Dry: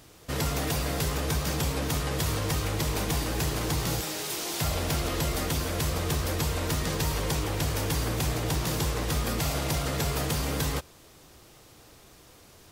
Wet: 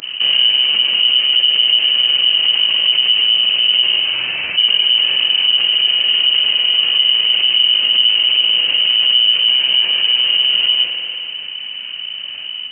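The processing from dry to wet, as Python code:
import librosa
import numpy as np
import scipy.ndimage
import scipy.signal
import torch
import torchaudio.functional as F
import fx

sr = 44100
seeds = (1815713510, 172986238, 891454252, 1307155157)

y = fx.rattle_buzz(x, sr, strikes_db=-33.0, level_db=-25.0)
y = fx.rider(y, sr, range_db=10, speed_s=0.5)
y = fx.tilt_eq(y, sr, slope=-3.5)
y = fx.doubler(y, sr, ms=32.0, db=-6.5)
y = fx.granulator(y, sr, seeds[0], grain_ms=100.0, per_s=20.0, spray_ms=100.0, spread_st=0)
y = fx.dmg_noise_colour(y, sr, seeds[1], colour='violet', level_db=-54.0)
y = fx.freq_invert(y, sr, carrier_hz=3000)
y = scipy.signal.sosfilt(scipy.signal.butter(2, 94.0, 'highpass', fs=sr, output='sos'), y)
y = fx.rev_spring(y, sr, rt60_s=1.8, pass_ms=(48,), chirp_ms=75, drr_db=8.5)
y = fx.env_flatten(y, sr, amount_pct=50)
y = y * librosa.db_to_amplitude(-1.0)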